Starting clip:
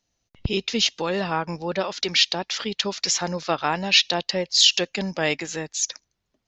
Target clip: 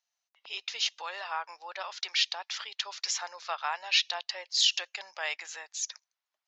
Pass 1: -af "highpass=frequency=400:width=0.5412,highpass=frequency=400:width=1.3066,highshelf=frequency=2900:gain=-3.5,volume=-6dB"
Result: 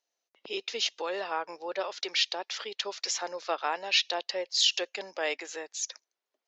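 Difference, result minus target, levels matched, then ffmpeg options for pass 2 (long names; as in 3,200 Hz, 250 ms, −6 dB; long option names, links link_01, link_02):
500 Hz band +11.5 dB
-af "highpass=frequency=800:width=0.5412,highpass=frequency=800:width=1.3066,highshelf=frequency=2900:gain=-3.5,volume=-6dB"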